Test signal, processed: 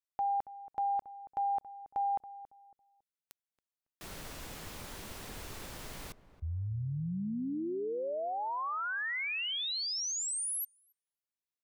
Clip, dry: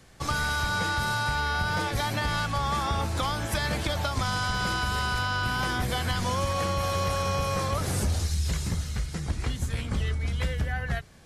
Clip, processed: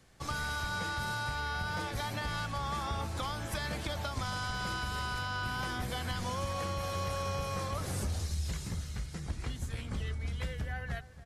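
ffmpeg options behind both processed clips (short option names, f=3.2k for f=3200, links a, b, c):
-filter_complex "[0:a]asplit=2[a][b];[b]adelay=277,lowpass=f=1k:p=1,volume=-14dB,asplit=2[c][d];[d]adelay=277,lowpass=f=1k:p=1,volume=0.33,asplit=2[e][f];[f]adelay=277,lowpass=f=1k:p=1,volume=0.33[g];[a][c][e][g]amix=inputs=4:normalize=0,volume=-8dB"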